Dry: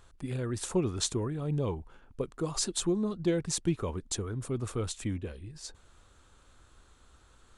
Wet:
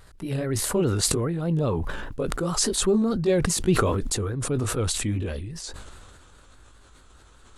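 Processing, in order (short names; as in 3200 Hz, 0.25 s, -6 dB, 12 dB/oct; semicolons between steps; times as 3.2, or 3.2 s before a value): gliding pitch shift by +2 st ending unshifted; vibrato 4.9 Hz 79 cents; sustainer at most 27 dB/s; gain +7 dB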